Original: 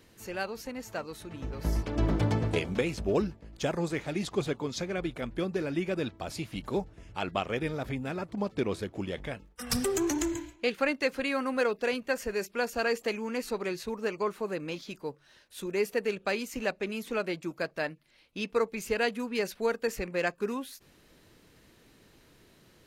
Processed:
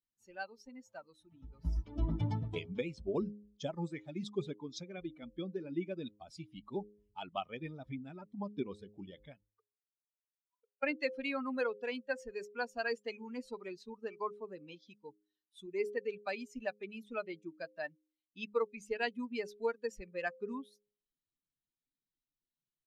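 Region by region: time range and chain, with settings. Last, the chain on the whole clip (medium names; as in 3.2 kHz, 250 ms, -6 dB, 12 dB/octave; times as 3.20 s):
9.50–10.83 s: inverted gate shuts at -28 dBFS, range -39 dB + auto-wah 440–1600 Hz, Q 5.9, down, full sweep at -45 dBFS + waveshaping leveller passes 3
whole clip: expander on every frequency bin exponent 2; low-pass 5.1 kHz 12 dB/octave; de-hum 103.7 Hz, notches 5; trim -2.5 dB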